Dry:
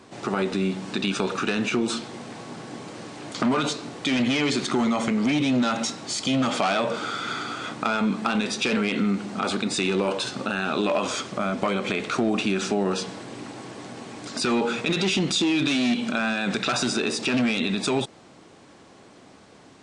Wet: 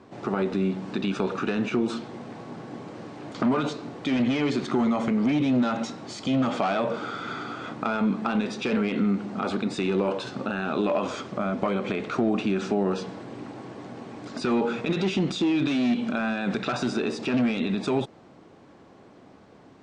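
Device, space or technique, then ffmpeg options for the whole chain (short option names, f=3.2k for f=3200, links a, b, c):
through cloth: -af "lowpass=7.2k,highshelf=f=2k:g=-11.5"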